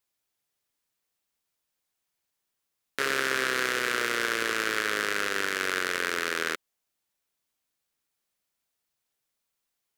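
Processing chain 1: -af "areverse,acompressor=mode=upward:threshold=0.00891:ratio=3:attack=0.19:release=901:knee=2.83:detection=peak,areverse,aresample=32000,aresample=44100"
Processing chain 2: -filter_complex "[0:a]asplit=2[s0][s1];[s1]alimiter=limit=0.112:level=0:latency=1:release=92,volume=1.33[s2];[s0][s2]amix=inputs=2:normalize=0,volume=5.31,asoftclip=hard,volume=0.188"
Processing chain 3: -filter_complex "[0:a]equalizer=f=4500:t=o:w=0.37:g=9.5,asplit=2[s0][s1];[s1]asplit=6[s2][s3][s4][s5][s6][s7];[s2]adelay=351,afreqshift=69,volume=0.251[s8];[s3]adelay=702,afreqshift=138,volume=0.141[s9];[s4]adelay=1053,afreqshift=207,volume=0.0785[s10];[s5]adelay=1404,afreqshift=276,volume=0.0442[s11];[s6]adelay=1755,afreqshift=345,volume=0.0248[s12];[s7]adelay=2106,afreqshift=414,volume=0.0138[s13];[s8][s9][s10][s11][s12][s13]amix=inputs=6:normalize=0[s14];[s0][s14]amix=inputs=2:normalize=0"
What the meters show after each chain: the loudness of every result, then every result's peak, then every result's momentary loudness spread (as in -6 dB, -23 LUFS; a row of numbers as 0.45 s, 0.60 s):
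-27.5 LUFS, -25.0 LUFS, -26.0 LUFS; -8.5 dBFS, -14.5 dBFS, -7.0 dBFS; 4 LU, 4 LU, 14 LU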